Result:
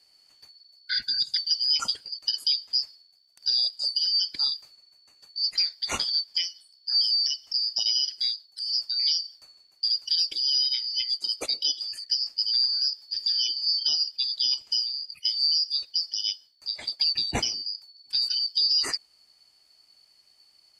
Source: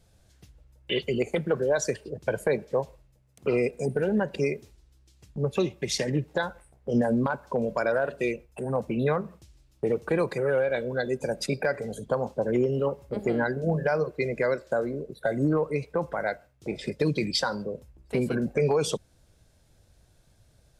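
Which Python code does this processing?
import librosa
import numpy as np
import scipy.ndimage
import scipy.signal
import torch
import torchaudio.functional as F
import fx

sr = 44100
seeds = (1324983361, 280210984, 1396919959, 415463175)

y = fx.band_shuffle(x, sr, order='4321')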